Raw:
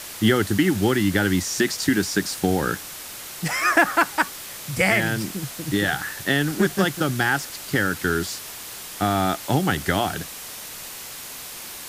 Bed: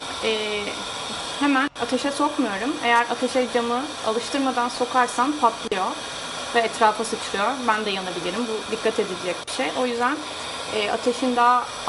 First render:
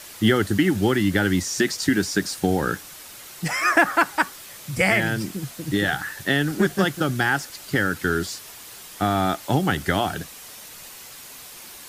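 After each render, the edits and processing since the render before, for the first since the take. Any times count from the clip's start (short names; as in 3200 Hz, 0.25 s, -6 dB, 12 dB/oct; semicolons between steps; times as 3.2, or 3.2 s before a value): denoiser 6 dB, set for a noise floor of -37 dBFS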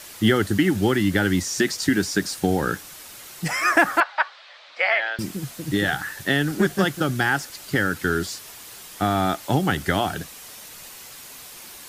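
4–5.19 elliptic band-pass 600–4100 Hz, stop band 60 dB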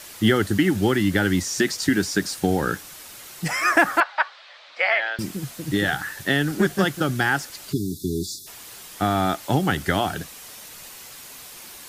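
7.73–8.47 spectral delete 430–3400 Hz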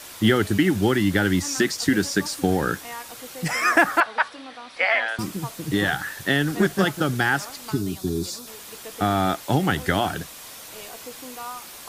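add bed -18.5 dB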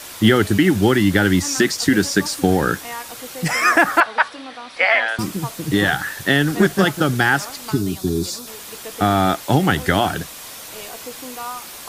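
gain +5 dB; limiter -3 dBFS, peak gain reduction 3 dB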